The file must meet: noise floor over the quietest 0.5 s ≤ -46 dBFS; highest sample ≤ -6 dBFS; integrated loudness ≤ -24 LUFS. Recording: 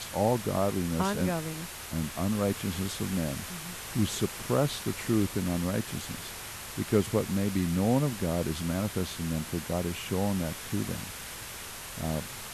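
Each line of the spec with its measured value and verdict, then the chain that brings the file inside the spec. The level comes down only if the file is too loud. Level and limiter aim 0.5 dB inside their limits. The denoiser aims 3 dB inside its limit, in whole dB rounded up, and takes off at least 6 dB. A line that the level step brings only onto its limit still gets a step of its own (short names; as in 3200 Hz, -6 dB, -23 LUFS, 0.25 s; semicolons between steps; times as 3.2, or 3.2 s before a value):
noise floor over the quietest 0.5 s -41 dBFS: fail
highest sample -12.0 dBFS: OK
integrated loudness -31.0 LUFS: OK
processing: denoiser 8 dB, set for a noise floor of -41 dBFS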